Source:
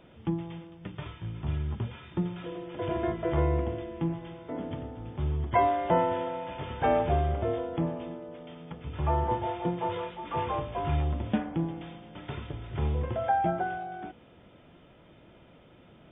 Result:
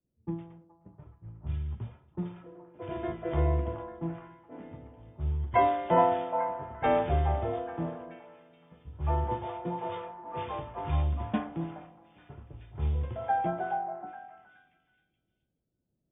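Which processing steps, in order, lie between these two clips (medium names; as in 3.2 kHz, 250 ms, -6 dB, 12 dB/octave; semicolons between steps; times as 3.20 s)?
level-controlled noise filter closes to 310 Hz, open at -23.5 dBFS; repeats whose band climbs or falls 424 ms, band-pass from 830 Hz, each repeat 0.7 oct, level -3 dB; three bands expanded up and down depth 70%; trim -4.5 dB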